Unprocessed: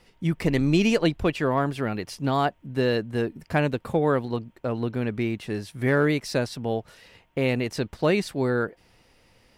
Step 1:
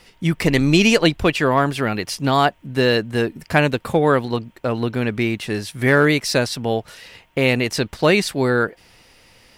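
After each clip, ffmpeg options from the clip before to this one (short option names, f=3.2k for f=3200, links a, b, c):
-af "tiltshelf=f=1.2k:g=-3.5,volume=8.5dB"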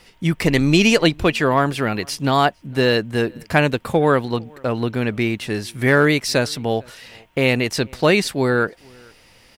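-filter_complex "[0:a]asplit=2[a][b];[b]adelay=454.8,volume=-28dB,highshelf=f=4k:g=-10.2[c];[a][c]amix=inputs=2:normalize=0"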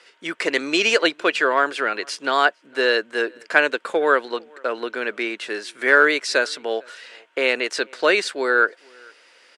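-af "highpass=f=370:w=0.5412,highpass=f=370:w=1.3066,equalizer=f=790:t=q:w=4:g=-6,equalizer=f=1.5k:t=q:w=4:g=8,equalizer=f=5.6k:t=q:w=4:g=-3,lowpass=f=8.5k:w=0.5412,lowpass=f=8.5k:w=1.3066,volume=-1dB"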